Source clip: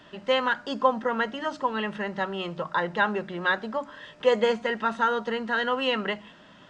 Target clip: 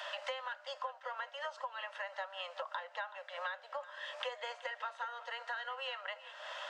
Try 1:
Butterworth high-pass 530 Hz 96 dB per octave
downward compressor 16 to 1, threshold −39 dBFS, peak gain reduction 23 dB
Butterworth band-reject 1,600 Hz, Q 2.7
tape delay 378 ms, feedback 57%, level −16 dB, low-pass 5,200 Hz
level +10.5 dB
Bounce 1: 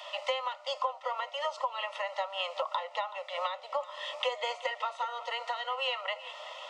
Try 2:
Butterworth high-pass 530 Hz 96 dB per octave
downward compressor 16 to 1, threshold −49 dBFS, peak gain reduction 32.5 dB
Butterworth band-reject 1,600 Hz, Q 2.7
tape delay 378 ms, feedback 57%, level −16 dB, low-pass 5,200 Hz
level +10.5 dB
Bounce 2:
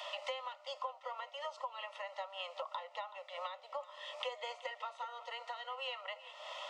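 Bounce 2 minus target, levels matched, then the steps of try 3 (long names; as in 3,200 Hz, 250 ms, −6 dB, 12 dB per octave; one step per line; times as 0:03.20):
2,000 Hz band −4.5 dB
Butterworth high-pass 530 Hz 96 dB per octave
downward compressor 16 to 1, threshold −49 dBFS, peak gain reduction 32.5 dB
tape delay 378 ms, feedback 57%, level −16 dB, low-pass 5,200 Hz
level +10.5 dB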